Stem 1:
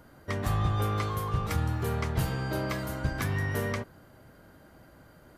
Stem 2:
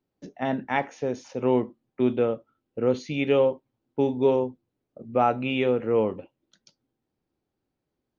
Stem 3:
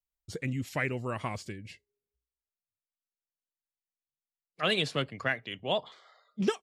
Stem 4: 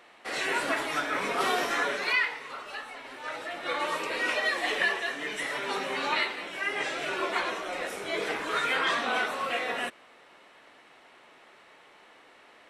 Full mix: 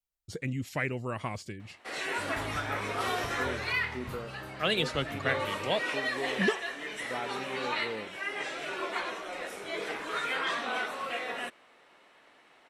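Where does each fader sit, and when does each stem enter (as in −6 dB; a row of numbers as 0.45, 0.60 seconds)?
−14.5, −16.5, −0.5, −4.5 decibels; 1.90, 1.95, 0.00, 1.60 seconds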